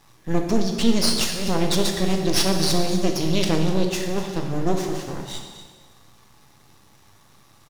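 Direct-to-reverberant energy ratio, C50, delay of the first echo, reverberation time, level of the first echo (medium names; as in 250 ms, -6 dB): 2.5 dB, 4.5 dB, 248 ms, 1.6 s, -14.5 dB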